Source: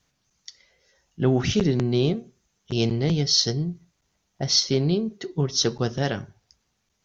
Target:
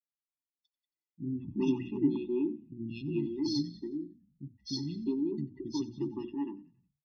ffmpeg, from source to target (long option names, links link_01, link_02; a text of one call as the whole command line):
ffmpeg -i in.wav -filter_complex "[0:a]lowpass=frequency=3600:poles=1,bandreject=frequency=60:width_type=h:width=6,bandreject=frequency=120:width_type=h:width=6,bandreject=frequency=180:width_type=h:width=6,bandreject=frequency=240:width_type=h:width=6,bandreject=frequency=300:width_type=h:width=6,bandreject=frequency=360:width_type=h:width=6,afftdn=noise_reduction=27:noise_floor=-35,highshelf=frequency=2000:gain=-10.5,acontrast=60,asplit=3[link_01][link_02][link_03];[link_01]bandpass=frequency=300:width_type=q:width=8,volume=0dB[link_04];[link_02]bandpass=frequency=870:width_type=q:width=8,volume=-6dB[link_05];[link_03]bandpass=frequency=2240:width_type=q:width=8,volume=-9dB[link_06];[link_04][link_05][link_06]amix=inputs=3:normalize=0,acrossover=split=230|2400[link_07][link_08][link_09];[link_09]adelay=170[link_10];[link_08]adelay=360[link_11];[link_07][link_11][link_10]amix=inputs=3:normalize=0,aexciter=amount=3:drive=9.5:freq=2500,asplit=2[link_12][link_13];[link_13]asplit=4[link_14][link_15][link_16][link_17];[link_14]adelay=91,afreqshift=-38,volume=-21.5dB[link_18];[link_15]adelay=182,afreqshift=-76,volume=-27.2dB[link_19];[link_16]adelay=273,afreqshift=-114,volume=-32.9dB[link_20];[link_17]adelay=364,afreqshift=-152,volume=-38.5dB[link_21];[link_18][link_19][link_20][link_21]amix=inputs=4:normalize=0[link_22];[link_12][link_22]amix=inputs=2:normalize=0,afftfilt=real='re*eq(mod(floor(b*sr/1024/410),2),0)':imag='im*eq(mod(floor(b*sr/1024/410),2),0)':win_size=1024:overlap=0.75" out.wav